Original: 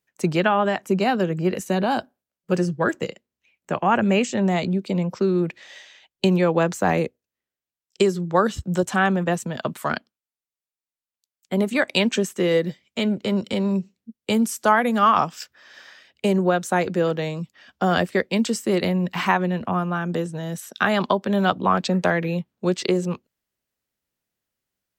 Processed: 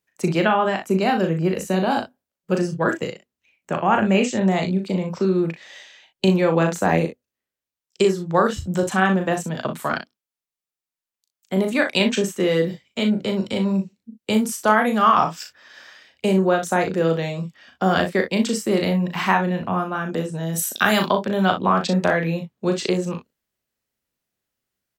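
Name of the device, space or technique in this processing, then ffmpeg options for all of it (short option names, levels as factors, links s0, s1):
slapback doubling: -filter_complex "[0:a]asplit=3[s0][s1][s2];[s0]afade=t=out:st=20.53:d=0.02[s3];[s1]aemphasis=mode=production:type=75kf,afade=t=in:st=20.53:d=0.02,afade=t=out:st=21.04:d=0.02[s4];[s2]afade=t=in:st=21.04:d=0.02[s5];[s3][s4][s5]amix=inputs=3:normalize=0,asplit=3[s6][s7][s8];[s7]adelay=37,volume=0.531[s9];[s8]adelay=61,volume=0.251[s10];[s6][s9][s10]amix=inputs=3:normalize=0"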